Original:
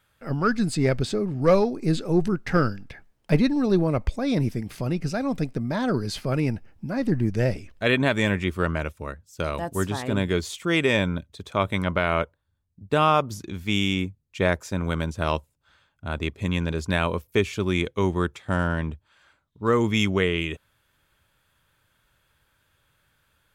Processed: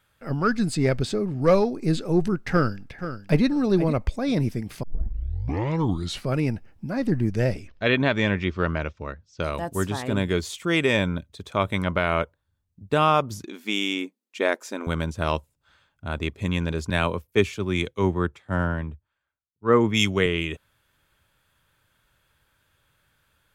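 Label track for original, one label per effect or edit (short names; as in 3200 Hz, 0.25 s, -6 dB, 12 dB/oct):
2.500000	3.440000	echo throw 0.48 s, feedback 15%, level -11 dB
4.830000	4.830000	tape start 1.46 s
7.680000	9.420000	steep low-pass 5900 Hz
13.450000	14.870000	brick-wall FIR high-pass 210 Hz
16.900000	20.260000	three-band expander depth 100%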